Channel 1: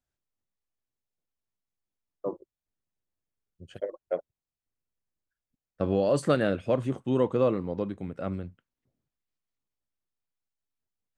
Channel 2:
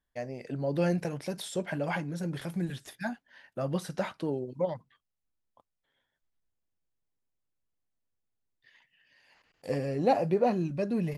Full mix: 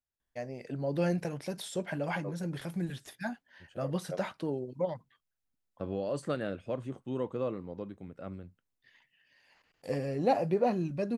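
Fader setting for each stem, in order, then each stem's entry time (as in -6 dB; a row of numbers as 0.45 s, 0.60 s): -9.5 dB, -2.0 dB; 0.00 s, 0.20 s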